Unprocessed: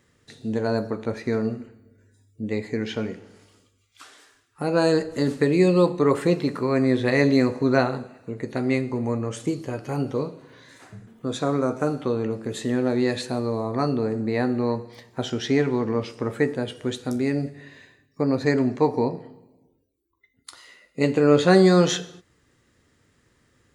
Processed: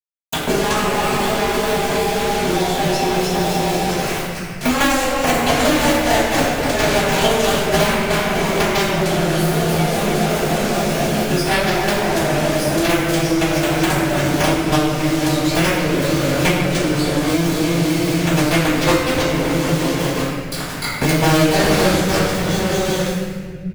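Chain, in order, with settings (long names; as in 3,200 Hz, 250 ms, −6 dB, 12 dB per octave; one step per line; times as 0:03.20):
pitch glide at a constant tempo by +11 semitones ending unshifted
bouncing-ball delay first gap 300 ms, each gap 0.85×, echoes 5
log-companded quantiser 2 bits
granular cloud 100 ms, spray 13 ms, pitch spread up and down by 0 semitones
convolution reverb RT60 0.90 s, pre-delay 47 ms
multiband upward and downward compressor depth 100%
level −13 dB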